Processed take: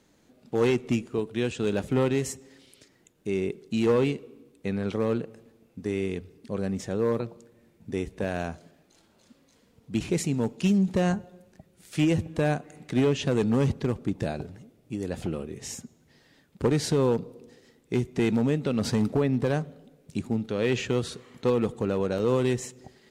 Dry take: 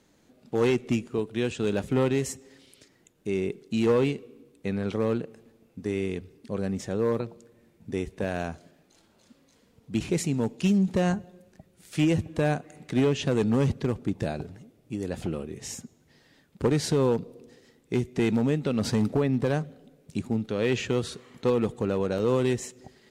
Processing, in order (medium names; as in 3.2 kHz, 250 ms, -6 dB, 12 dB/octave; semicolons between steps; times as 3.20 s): on a send: elliptic low-pass 1.4 kHz + reverberation RT60 0.85 s, pre-delay 18 ms, DRR 25 dB